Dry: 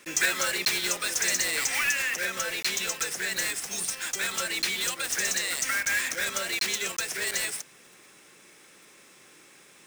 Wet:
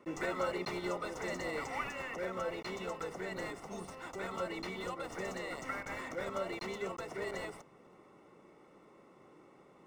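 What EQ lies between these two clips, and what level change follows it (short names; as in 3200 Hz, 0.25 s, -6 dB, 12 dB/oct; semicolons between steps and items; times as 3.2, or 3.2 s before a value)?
polynomial smoothing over 65 samples; +1.0 dB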